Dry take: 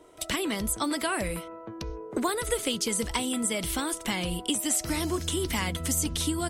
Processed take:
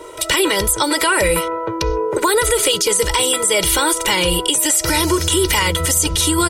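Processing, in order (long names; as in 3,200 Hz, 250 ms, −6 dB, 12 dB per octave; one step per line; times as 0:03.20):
downward compressor 2.5 to 1, threshold −29 dBFS, peak gain reduction 5 dB
low-shelf EQ 260 Hz −8 dB
comb filter 2.1 ms, depth 92%
boost into a limiter +23 dB
level −5 dB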